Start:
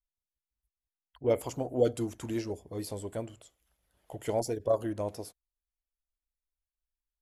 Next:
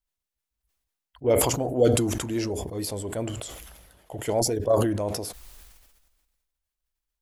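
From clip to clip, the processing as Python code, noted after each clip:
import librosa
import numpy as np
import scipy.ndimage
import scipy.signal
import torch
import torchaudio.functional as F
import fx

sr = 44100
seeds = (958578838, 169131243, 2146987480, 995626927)

y = fx.sustainer(x, sr, db_per_s=38.0)
y = y * 10.0 ** (4.5 / 20.0)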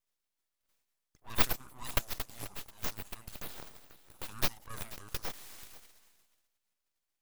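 y = np.diff(x, prepend=0.0)
y = y + 10.0 ** (-17.0 / 20.0) * np.pad(y, (int(486 * sr / 1000.0), 0))[:len(y)]
y = np.abs(y)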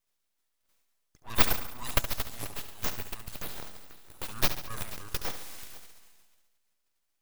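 y = fx.echo_feedback(x, sr, ms=70, feedback_pct=57, wet_db=-11.0)
y = y * 10.0 ** (4.5 / 20.0)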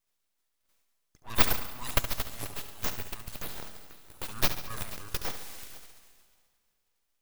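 y = fx.rev_plate(x, sr, seeds[0], rt60_s=2.7, hf_ratio=1.0, predelay_ms=0, drr_db=17.0)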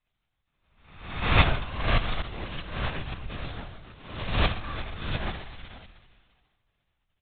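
y = fx.spec_swells(x, sr, rise_s=0.82)
y = fx.lpc_vocoder(y, sr, seeds[1], excitation='whisper', order=16)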